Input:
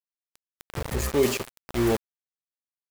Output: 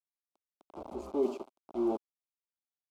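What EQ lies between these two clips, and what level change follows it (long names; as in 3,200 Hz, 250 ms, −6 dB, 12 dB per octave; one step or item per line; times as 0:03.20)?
resonant band-pass 490 Hz, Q 1.6
phaser with its sweep stopped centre 480 Hz, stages 6
0.0 dB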